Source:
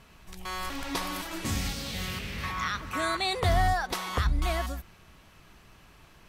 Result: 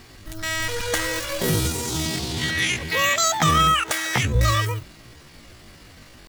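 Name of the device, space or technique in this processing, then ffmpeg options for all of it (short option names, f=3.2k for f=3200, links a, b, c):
chipmunk voice: -filter_complex "[0:a]asetrate=76340,aresample=44100,atempo=0.577676,asettb=1/sr,asplit=3[a][b][c];[a]atrim=end=3.094[d];[b]atrim=start=3.09:end=4.35,asetpts=PTS-STARTPTS,afade=t=in:d=0.004:c=qsin,afade=t=out:st=1.256:d=0.004:c=qsin,highpass=f=230:p=1[e];[c]atrim=start=4.346[f];[d][e]acrossfade=d=0.004:c1=hsin:c2=qsin[g];[g][f]acrossfade=d=0.004:c1=qsin:c2=hsin,volume=9dB"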